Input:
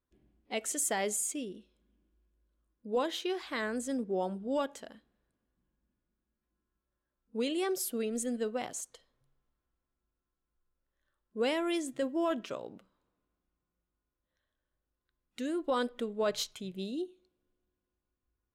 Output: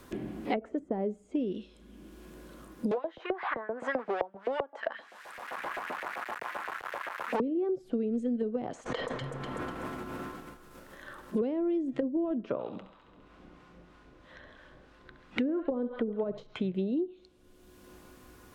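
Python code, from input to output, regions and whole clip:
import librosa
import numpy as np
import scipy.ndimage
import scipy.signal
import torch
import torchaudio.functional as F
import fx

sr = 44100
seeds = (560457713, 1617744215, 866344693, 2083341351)

y = fx.chain(x, sr, fx.law_mismatch(coded='mu'),
    fx.filter_lfo_highpass(shape='saw_up', hz=7.7, low_hz=570.0, high_hz=2200.0, q=2.3),
    fx.band_squash(depth_pct=40), at=(2.91, 7.4))
y = fx.chain(y, sr, fx.echo_alternate(ms=123, hz=1500.0, feedback_pct=50, wet_db=-12.5),
    fx.sustainer(db_per_s=21.0), at=(8.83, 11.38))
y = fx.chain(y, sr, fx.lowpass(hz=2900.0, slope=12),
    fx.harmonic_tremolo(hz=3.1, depth_pct=50, crossover_hz=770.0),
    fx.echo_thinned(ms=68, feedback_pct=65, hz=650.0, wet_db=-11), at=(12.52, 16.38))
y = fx.env_lowpass_down(y, sr, base_hz=360.0, full_db=-30.5)
y = fx.band_squash(y, sr, depth_pct=100)
y = y * librosa.db_to_amplitude(7.0)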